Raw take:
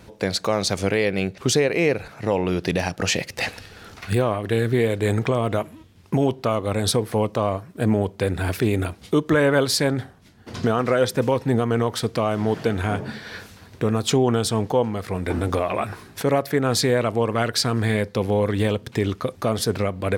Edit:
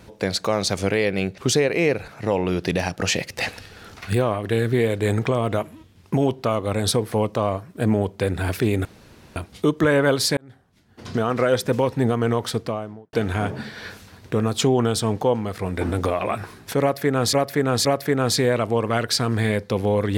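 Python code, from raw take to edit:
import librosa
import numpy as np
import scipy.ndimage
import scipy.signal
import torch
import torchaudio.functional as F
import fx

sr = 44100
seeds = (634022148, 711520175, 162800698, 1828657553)

y = fx.studio_fade_out(x, sr, start_s=11.93, length_s=0.69)
y = fx.edit(y, sr, fx.insert_room_tone(at_s=8.85, length_s=0.51),
    fx.fade_in_span(start_s=9.86, length_s=1.03),
    fx.repeat(start_s=16.3, length_s=0.52, count=3), tone=tone)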